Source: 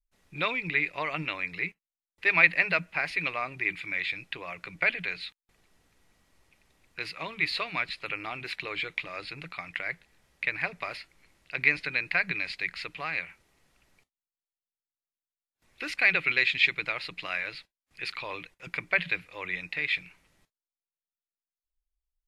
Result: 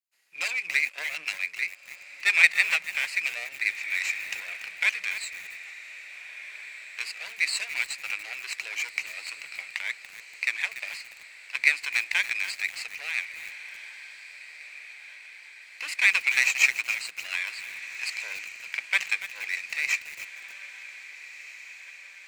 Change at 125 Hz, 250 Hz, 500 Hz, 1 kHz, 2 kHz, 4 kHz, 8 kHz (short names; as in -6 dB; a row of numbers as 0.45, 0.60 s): under -25 dB, under -20 dB, -13.0 dB, -7.5 dB, +2.5 dB, +3.0 dB, n/a